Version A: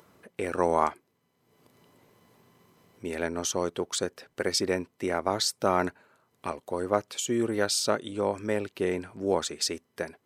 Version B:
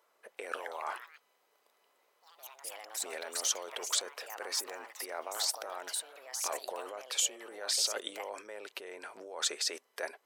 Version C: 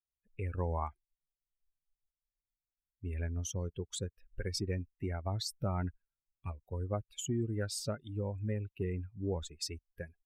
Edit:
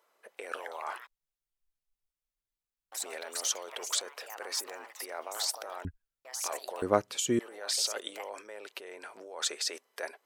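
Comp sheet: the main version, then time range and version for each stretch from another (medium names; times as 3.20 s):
B
1.07–2.92 s: from C
5.85–6.25 s: from C
6.82–7.39 s: from A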